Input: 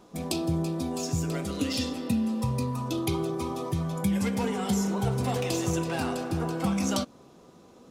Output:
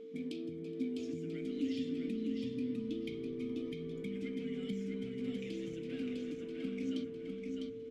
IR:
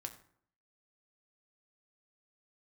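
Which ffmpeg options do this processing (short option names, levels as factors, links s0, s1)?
-filter_complex "[0:a]acompressor=threshold=0.0112:ratio=3,asplit=3[s0][s1][s2];[s0]bandpass=f=270:t=q:w=8,volume=1[s3];[s1]bandpass=f=2290:t=q:w=8,volume=0.501[s4];[s2]bandpass=f=3010:t=q:w=8,volume=0.355[s5];[s3][s4][s5]amix=inputs=3:normalize=0,asplit=2[s6][s7];[s7]asplit=4[s8][s9][s10][s11];[s8]adelay=420,afreqshift=-74,volume=0.0841[s12];[s9]adelay=840,afreqshift=-148,volume=0.049[s13];[s10]adelay=1260,afreqshift=-222,volume=0.0282[s14];[s11]adelay=1680,afreqshift=-296,volume=0.0164[s15];[s12][s13][s14][s15]amix=inputs=4:normalize=0[s16];[s6][s16]amix=inputs=2:normalize=0,aeval=exprs='val(0)+0.002*sin(2*PI*450*n/s)':c=same,asplit=2[s17][s18];[s18]aecho=0:1:653|1306|1959:0.631|0.158|0.0394[s19];[s17][s19]amix=inputs=2:normalize=0,volume=2.37"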